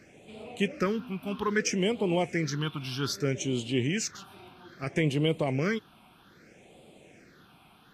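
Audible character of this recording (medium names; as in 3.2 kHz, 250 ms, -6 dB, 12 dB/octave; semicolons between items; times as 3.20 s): a quantiser's noise floor 12-bit, dither none; phasing stages 6, 0.62 Hz, lowest notch 480–1600 Hz; Vorbis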